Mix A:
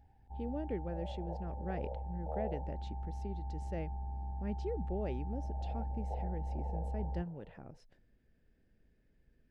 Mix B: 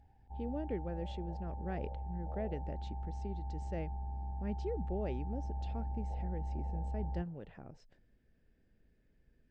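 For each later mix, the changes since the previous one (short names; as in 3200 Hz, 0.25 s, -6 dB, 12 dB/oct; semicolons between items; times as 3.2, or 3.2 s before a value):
second sound -9.0 dB; master: add brick-wall FIR low-pass 8700 Hz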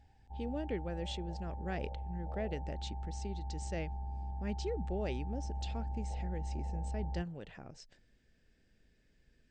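speech: remove LPF 1000 Hz 6 dB/oct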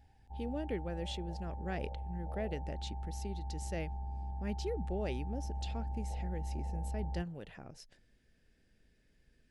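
master: remove brick-wall FIR low-pass 8700 Hz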